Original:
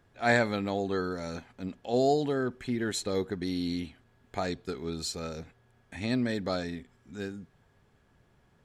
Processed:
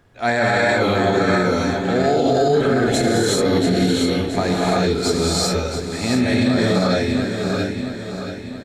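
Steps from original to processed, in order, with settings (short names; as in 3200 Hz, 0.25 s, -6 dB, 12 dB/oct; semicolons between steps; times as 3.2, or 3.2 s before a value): feedback echo 0.679 s, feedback 51%, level -9 dB; non-linear reverb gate 0.42 s rising, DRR -7 dB; maximiser +16 dB; gain -7.5 dB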